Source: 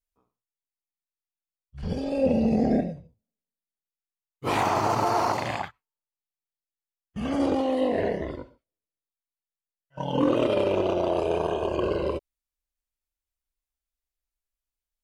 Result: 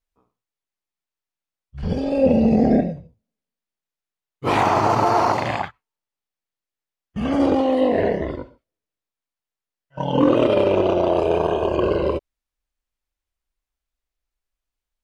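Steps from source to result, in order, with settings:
low-pass filter 3,800 Hz 6 dB per octave
level +6.5 dB

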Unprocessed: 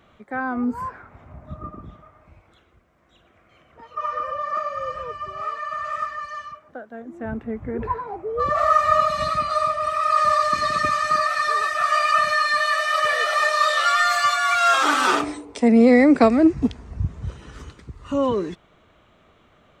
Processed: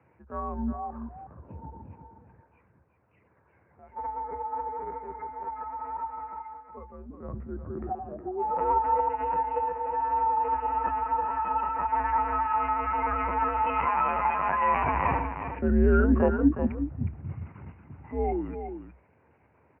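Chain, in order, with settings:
linear-prediction vocoder at 8 kHz pitch kept
pitch shifter −6.5 semitones
frequency shifter +62 Hz
on a send: single-tap delay 364 ms −8.5 dB
on the sum: level −7 dB

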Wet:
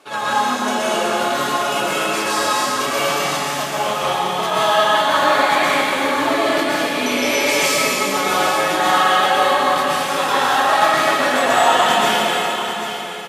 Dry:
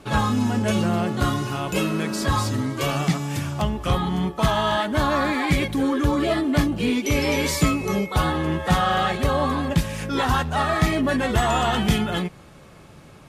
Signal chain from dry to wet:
high-pass filter 510 Hz 12 dB per octave
single-tap delay 788 ms −10 dB
dense smooth reverb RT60 2.7 s, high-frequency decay 1×, pre-delay 105 ms, DRR −8.5 dB

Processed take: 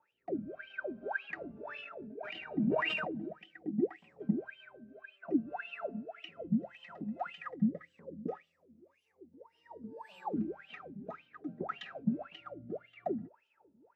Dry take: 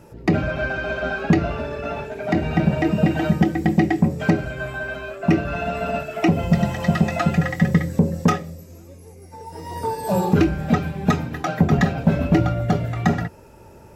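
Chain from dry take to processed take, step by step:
LFO wah 1.8 Hz 210–3,100 Hz, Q 20
speech leveller within 3 dB 2 s
rotating-speaker cabinet horn 0.65 Hz
0:01.54–0:03.26: level that may fall only so fast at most 23 dB per second

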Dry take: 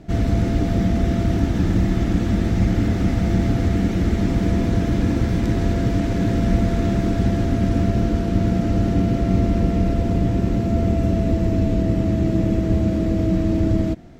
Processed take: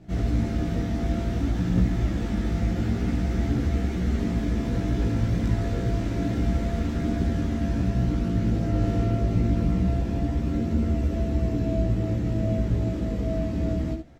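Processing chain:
multi-voice chorus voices 2, 0.28 Hz, delay 16 ms, depth 3.3 ms
ambience of single reflections 17 ms −7 dB, 72 ms −7.5 dB
level −4.5 dB

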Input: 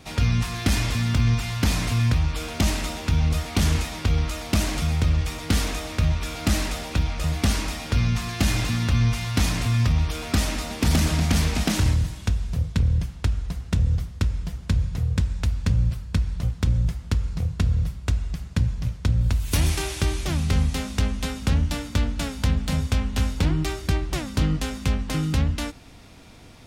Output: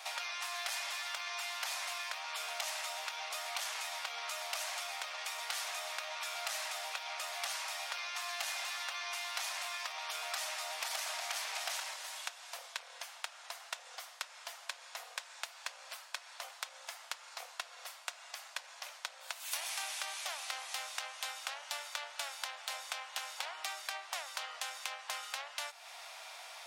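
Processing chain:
Butterworth high-pass 640 Hz 48 dB per octave
downward compressor 3 to 1, threshold −45 dBFS, peak gain reduction 15.5 dB
level +4 dB

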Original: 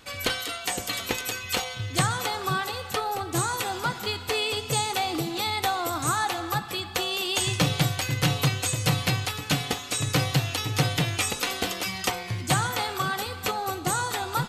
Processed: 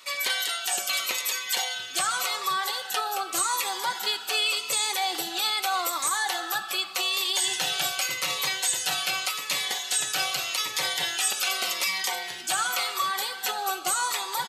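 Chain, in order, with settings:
high-pass filter 780 Hz 12 dB per octave
comb filter 5.3 ms, depth 46%
brickwall limiter −19.5 dBFS, peak gain reduction 8.5 dB
phaser whose notches keep moving one way falling 0.85 Hz
level +5 dB

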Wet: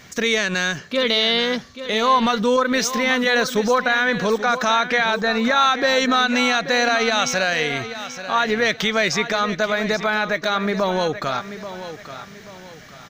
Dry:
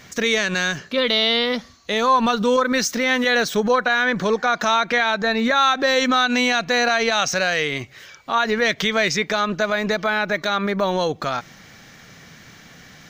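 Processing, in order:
repeating echo 834 ms, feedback 36%, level −12 dB

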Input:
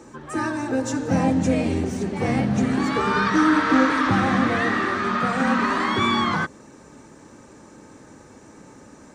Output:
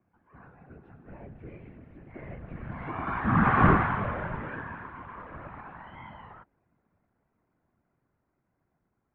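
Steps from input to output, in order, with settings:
source passing by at 0:03.61, 10 m/s, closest 1.6 metres
random phases in short frames
single-sideband voice off tune −170 Hz 230–2,700 Hz

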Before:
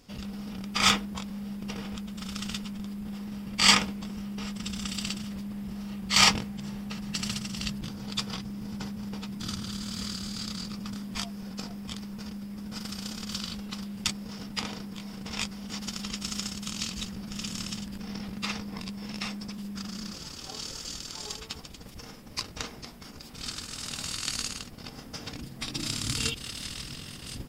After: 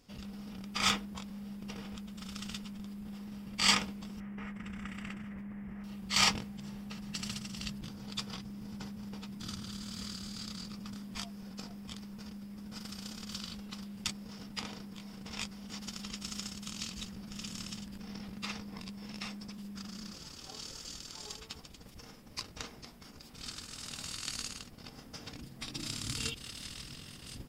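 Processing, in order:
0:04.20–0:05.84: high shelf with overshoot 2,900 Hz −13.5 dB, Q 3
level −7 dB

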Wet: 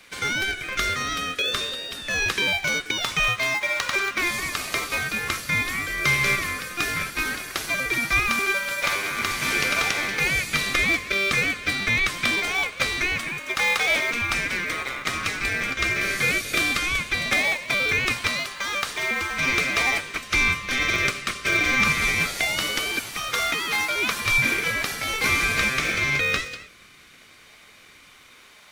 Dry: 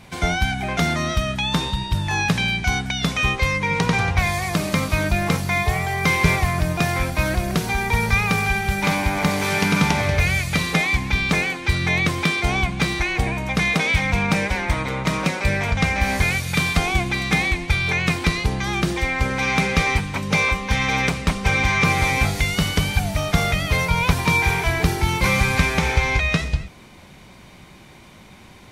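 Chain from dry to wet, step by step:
Butterworth high-pass 1,100 Hz 96 dB per octave
in parallel at −8 dB: sample-and-hold swept by an LFO 30×, swing 100% 0.2 Hz

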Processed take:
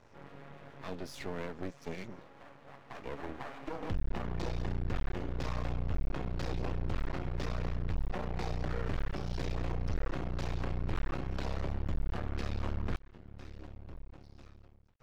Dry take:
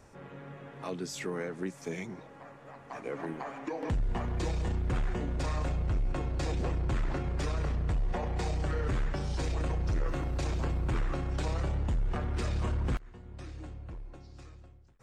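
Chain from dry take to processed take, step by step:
low-pass filter 5,600 Hz 24 dB per octave
half-wave rectification

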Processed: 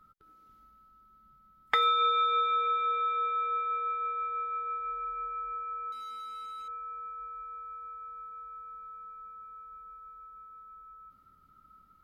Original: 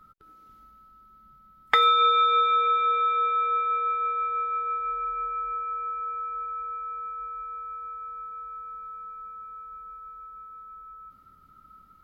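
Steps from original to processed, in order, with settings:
0:05.92–0:06.68: hard clipping −34 dBFS, distortion −26 dB
level −6 dB

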